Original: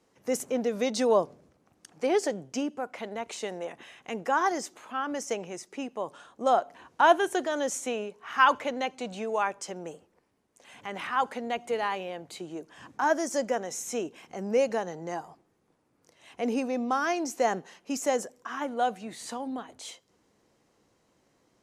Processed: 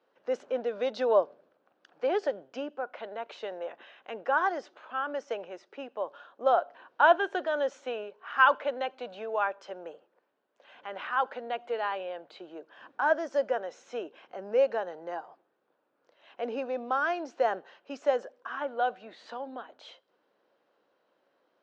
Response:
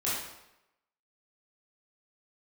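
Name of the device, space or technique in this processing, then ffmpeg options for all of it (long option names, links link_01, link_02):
phone earpiece: -af "highpass=400,equalizer=frequency=570:width_type=q:width=4:gain=6,equalizer=frequency=1500:width_type=q:width=4:gain=6,equalizer=frequency=2100:width_type=q:width=4:gain=-6,lowpass=frequency=3800:width=0.5412,lowpass=frequency=3800:width=1.3066,volume=-2.5dB"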